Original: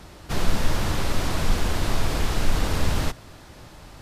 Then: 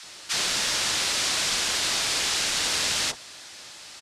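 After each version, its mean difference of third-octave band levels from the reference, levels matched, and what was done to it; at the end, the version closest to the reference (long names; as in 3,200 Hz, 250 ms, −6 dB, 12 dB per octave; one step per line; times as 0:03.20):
9.5 dB: meter weighting curve ITU-R 468
multiband delay without the direct sound highs, lows 30 ms, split 990 Hz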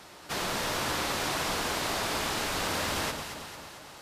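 5.0 dB: high-pass filter 640 Hz 6 dB per octave
on a send: delay that swaps between a low-pass and a high-pass 112 ms, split 1,300 Hz, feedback 75%, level −5 dB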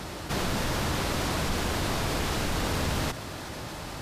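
3.5 dB: high-pass filter 100 Hz 6 dB per octave
envelope flattener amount 50%
level −2.5 dB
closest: third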